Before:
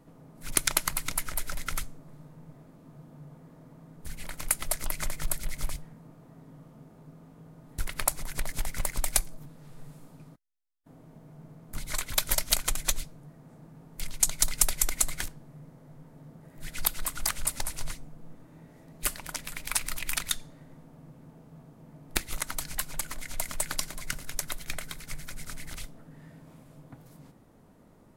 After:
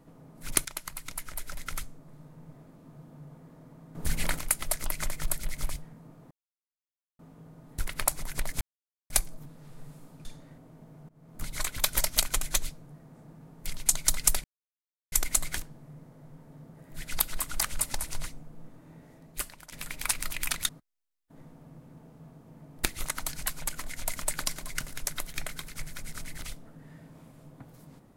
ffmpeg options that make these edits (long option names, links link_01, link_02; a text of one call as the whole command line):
ffmpeg -i in.wav -filter_complex "[0:a]asplit=15[link_01][link_02][link_03][link_04][link_05][link_06][link_07][link_08][link_09][link_10][link_11][link_12][link_13][link_14][link_15];[link_01]atrim=end=0.65,asetpts=PTS-STARTPTS,afade=type=out:start_time=0.646:duration=0.004:curve=hsin:silence=0.211349[link_16];[link_02]atrim=start=0.65:end=3.952,asetpts=PTS-STARTPTS,afade=type=in:duration=1.82:silence=0.211349[link_17];[link_03]atrim=start=3.948:end=4.392,asetpts=PTS-STARTPTS,volume=10.5dB[link_18];[link_04]atrim=start=4.388:end=6.31,asetpts=PTS-STARTPTS,afade=type=out:start_time=1.918:duration=0.004:curve=hsin[link_19];[link_05]atrim=start=6.31:end=7.19,asetpts=PTS-STARTPTS,volume=0[link_20];[link_06]atrim=start=7.19:end=8.61,asetpts=PTS-STARTPTS,afade=type=in:duration=0.004:curve=hsin,afade=type=out:start_time=1.416:duration=0.004:curve=hsin[link_21];[link_07]atrim=start=8.61:end=9.1,asetpts=PTS-STARTPTS,volume=0[link_22];[link_08]atrim=start=9.1:end=10.252,asetpts=PTS-STARTPTS,afade=type=in:duration=0.004:curve=hsin[link_23];[link_09]atrim=start=20.348:end=20.682[link_24];[link_10]atrim=start=10.918:end=11.43,asetpts=PTS-STARTPTS,afade=type=out:start_time=0.508:duration=0.004:curve=hsin:silence=0.0630957[link_25];[link_11]atrim=start=11.43:end=14.78,asetpts=PTS-STARTPTS,afade=type=in:duration=0.26:silence=0.0630957,afade=type=out:start_time=3.346:duration=0.004:curve=hsin,apad=pad_dur=0.68[link_26];[link_12]atrim=start=14.78:end=19.38,asetpts=PTS-STARTPTS,afade=type=in:duration=0.004:curve=hsin,afade=type=out:start_time=3.94:duration=0.66:silence=0.177828[link_27];[link_13]atrim=start=19.38:end=20.352,asetpts=PTS-STARTPTS,afade=type=in:duration=0.004:curve=hsin:silence=0.177828[link_28];[link_14]atrim=start=10.248:end=10.922[link_29];[link_15]atrim=start=20.678[link_30];[link_16][link_17]concat=n=2:v=0:a=1[link_31];[link_31][link_18]acrossfade=duration=0.004:curve1=hsin:curve2=hsin[link_32];[link_19][link_20][link_21][link_22][link_23]concat=n=5:v=0:a=1[link_33];[link_32][link_33]acrossfade=duration=0.004:curve1=hsin:curve2=hsin[link_34];[link_34][link_24]acrossfade=duration=0.004:curve1=hsin:curve2=hsin[link_35];[link_25][link_26][link_27][link_28]concat=n=4:v=0:a=1[link_36];[link_35][link_36]acrossfade=duration=0.004:curve1=hsin:curve2=hsin[link_37];[link_37][link_29]acrossfade=duration=0.004:curve1=hsin:curve2=hsin[link_38];[link_38][link_30]acrossfade=duration=0.004:curve1=hsin:curve2=hsin" out.wav